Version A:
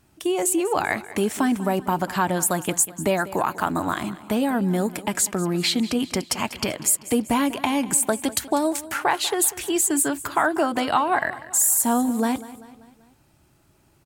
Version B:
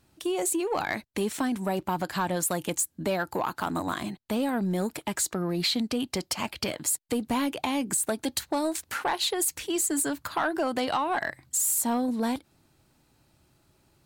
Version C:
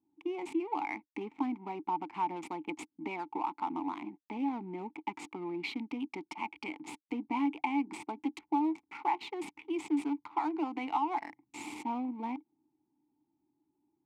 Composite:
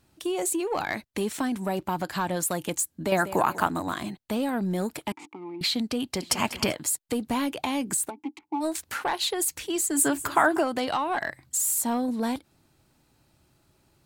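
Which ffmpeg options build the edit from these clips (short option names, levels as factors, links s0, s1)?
-filter_complex "[0:a]asplit=3[s0][s1][s2];[2:a]asplit=2[s3][s4];[1:a]asplit=6[s5][s6][s7][s8][s9][s10];[s5]atrim=end=3.122[s11];[s0]atrim=start=3.118:end=3.672[s12];[s6]atrim=start=3.668:end=5.122[s13];[s3]atrim=start=5.118:end=5.612[s14];[s7]atrim=start=5.608:end=6.222[s15];[s1]atrim=start=6.218:end=6.732[s16];[s8]atrim=start=6.728:end=8.11[s17];[s4]atrim=start=8.07:end=8.64[s18];[s9]atrim=start=8.6:end=10.03[s19];[s2]atrim=start=9.93:end=10.66[s20];[s10]atrim=start=10.56[s21];[s11][s12]acrossfade=d=0.004:c1=hsin:c2=hsin[s22];[s22][s13]acrossfade=d=0.004:c1=hsin:c2=hsin[s23];[s23][s14]acrossfade=d=0.004:c1=hsin:c2=hsin[s24];[s24][s15]acrossfade=d=0.004:c1=hsin:c2=hsin[s25];[s25][s16]acrossfade=d=0.004:c1=hsin:c2=hsin[s26];[s26][s17]acrossfade=d=0.004:c1=hsin:c2=hsin[s27];[s27][s18]acrossfade=d=0.04:c1=tri:c2=tri[s28];[s28][s19]acrossfade=d=0.04:c1=tri:c2=tri[s29];[s29][s20]acrossfade=d=0.1:c1=tri:c2=tri[s30];[s30][s21]acrossfade=d=0.1:c1=tri:c2=tri"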